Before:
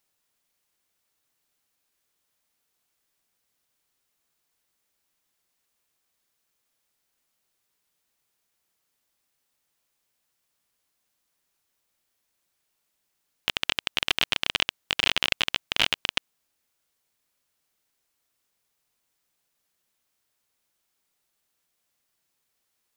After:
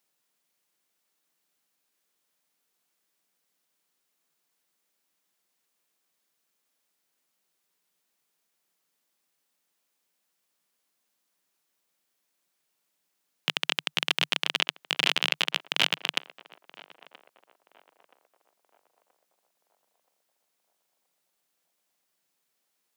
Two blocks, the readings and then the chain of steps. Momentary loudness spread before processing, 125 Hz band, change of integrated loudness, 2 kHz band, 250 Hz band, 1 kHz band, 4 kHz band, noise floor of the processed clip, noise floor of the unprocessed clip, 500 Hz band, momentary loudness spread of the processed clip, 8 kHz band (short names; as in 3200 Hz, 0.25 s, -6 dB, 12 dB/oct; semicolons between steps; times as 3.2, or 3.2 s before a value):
6 LU, -6.0 dB, -1.0 dB, -1.0 dB, -0.5 dB, -0.5 dB, -1.0 dB, -78 dBFS, -77 dBFS, 0.0 dB, 6 LU, -1.0 dB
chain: elliptic high-pass 150 Hz; narrowing echo 0.976 s, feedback 48%, band-pass 660 Hz, level -16.5 dB